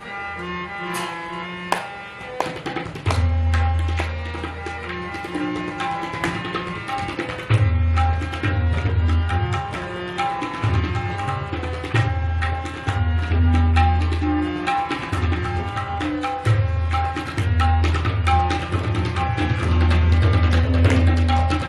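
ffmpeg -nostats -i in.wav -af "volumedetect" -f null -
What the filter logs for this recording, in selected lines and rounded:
mean_volume: -20.5 dB
max_volume: -4.5 dB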